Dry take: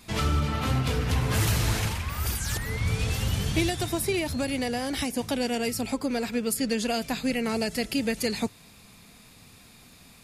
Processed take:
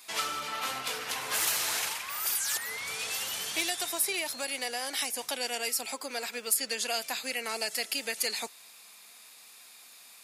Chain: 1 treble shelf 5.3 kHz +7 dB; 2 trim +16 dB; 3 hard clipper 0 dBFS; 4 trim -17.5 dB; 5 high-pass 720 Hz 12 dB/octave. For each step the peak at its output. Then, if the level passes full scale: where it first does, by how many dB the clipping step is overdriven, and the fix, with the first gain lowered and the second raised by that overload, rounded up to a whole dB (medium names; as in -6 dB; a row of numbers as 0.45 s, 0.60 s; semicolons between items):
-10.5 dBFS, +5.5 dBFS, 0.0 dBFS, -17.5 dBFS, -14.5 dBFS; step 2, 5.5 dB; step 2 +10 dB, step 4 -11.5 dB